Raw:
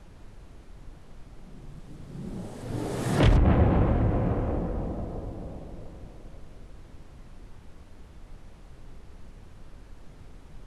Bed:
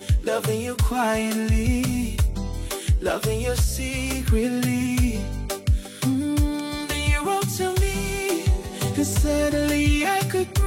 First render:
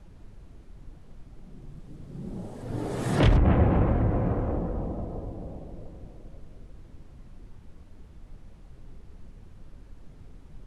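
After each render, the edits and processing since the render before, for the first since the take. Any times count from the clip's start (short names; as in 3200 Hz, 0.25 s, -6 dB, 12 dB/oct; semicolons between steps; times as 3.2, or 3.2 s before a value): denoiser 6 dB, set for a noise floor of -49 dBFS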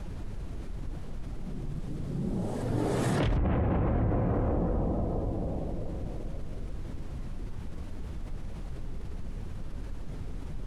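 limiter -21 dBFS, peak gain reduction 11 dB; fast leveller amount 50%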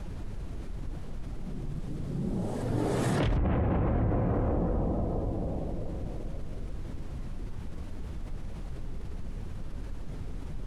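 nothing audible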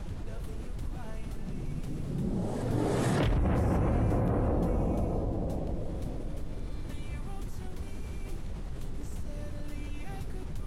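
add bed -26.5 dB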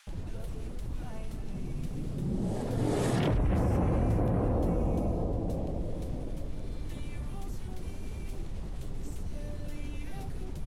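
bands offset in time highs, lows 70 ms, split 1400 Hz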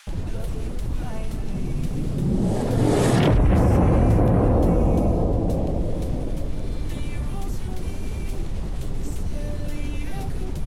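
gain +10 dB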